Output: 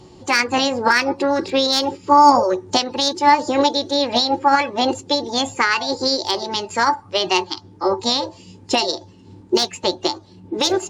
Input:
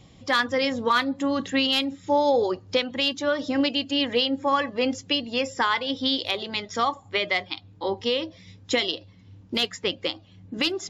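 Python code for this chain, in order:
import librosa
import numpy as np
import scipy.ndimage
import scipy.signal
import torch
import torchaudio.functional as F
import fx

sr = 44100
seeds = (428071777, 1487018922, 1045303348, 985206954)

y = fx.formant_shift(x, sr, semitones=5)
y = fx.small_body(y, sr, hz=(370.0, 880.0), ring_ms=90, db=16)
y = y * 10.0 ** (4.5 / 20.0)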